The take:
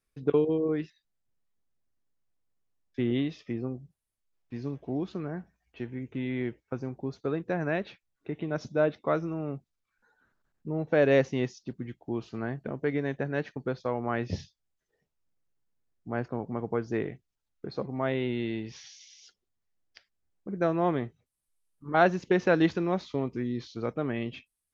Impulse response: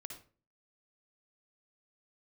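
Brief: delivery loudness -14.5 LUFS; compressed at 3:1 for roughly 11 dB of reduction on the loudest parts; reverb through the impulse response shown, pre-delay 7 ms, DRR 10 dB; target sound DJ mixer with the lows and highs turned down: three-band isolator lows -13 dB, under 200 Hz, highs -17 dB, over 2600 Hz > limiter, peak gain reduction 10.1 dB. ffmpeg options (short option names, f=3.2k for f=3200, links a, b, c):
-filter_complex "[0:a]acompressor=threshold=-33dB:ratio=3,asplit=2[a][b];[1:a]atrim=start_sample=2205,adelay=7[c];[b][c]afir=irnorm=-1:irlink=0,volume=-6dB[d];[a][d]amix=inputs=2:normalize=0,acrossover=split=200 2600:gain=0.224 1 0.141[e][f][g];[e][f][g]amix=inputs=3:normalize=0,volume=27dB,alimiter=limit=-3dB:level=0:latency=1"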